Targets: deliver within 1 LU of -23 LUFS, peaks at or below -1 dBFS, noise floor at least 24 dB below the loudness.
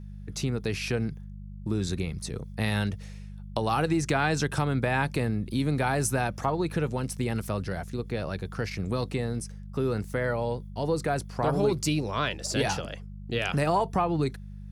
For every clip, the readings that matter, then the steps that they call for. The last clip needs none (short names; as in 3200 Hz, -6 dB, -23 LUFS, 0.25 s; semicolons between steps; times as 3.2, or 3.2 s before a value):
hum 50 Hz; harmonics up to 200 Hz; hum level -38 dBFS; loudness -29.0 LUFS; peak -13.0 dBFS; loudness target -23.0 LUFS
-> de-hum 50 Hz, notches 4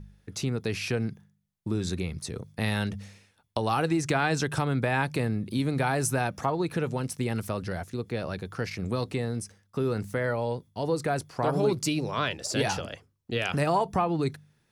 hum none; loudness -29.5 LUFS; peak -13.5 dBFS; loudness target -23.0 LUFS
-> gain +6.5 dB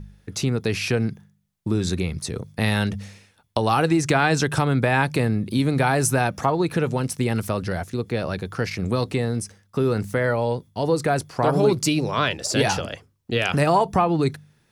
loudness -23.0 LUFS; peak -7.0 dBFS; noise floor -64 dBFS